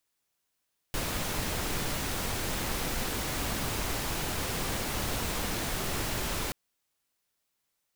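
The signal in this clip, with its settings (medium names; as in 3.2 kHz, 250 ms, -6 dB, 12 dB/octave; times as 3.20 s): noise pink, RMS -32 dBFS 5.58 s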